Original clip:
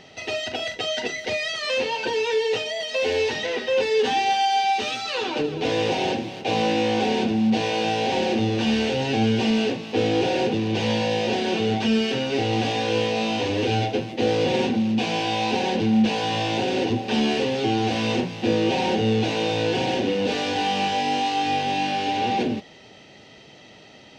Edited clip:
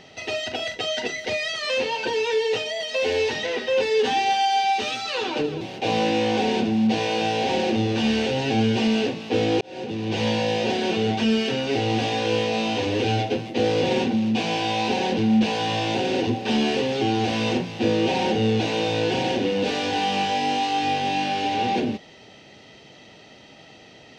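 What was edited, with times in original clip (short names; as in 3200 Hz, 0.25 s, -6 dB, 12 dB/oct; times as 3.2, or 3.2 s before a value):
5.61–6.24 cut
10.24–10.86 fade in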